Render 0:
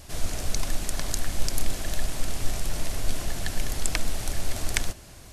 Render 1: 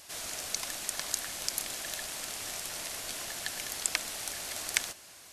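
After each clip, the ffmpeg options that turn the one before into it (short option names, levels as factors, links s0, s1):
-af "highpass=f=1200:p=1"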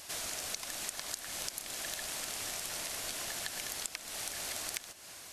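-af "acompressor=threshold=0.0126:ratio=16,volume=1.41"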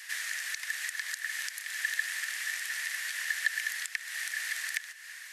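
-af "highpass=f=1800:t=q:w=11,volume=0.841"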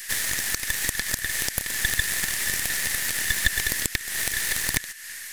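-af "aemphasis=mode=production:type=50kf,aeval=exprs='0.473*(cos(1*acos(clip(val(0)/0.473,-1,1)))-cos(1*PI/2))+0.0841*(cos(8*acos(clip(val(0)/0.473,-1,1)))-cos(8*PI/2))':c=same,volume=1.5"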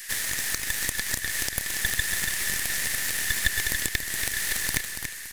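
-af "aecho=1:1:283|566|849|1132:0.447|0.152|0.0516|0.0176,volume=0.75"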